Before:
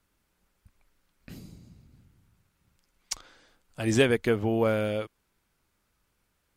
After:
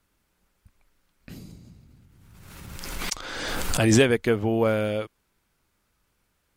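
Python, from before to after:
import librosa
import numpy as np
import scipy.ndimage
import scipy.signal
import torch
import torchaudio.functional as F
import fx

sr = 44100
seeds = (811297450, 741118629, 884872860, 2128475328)

y = fx.pre_swell(x, sr, db_per_s=29.0, at=(1.36, 4.06))
y = F.gain(torch.from_numpy(y), 2.5).numpy()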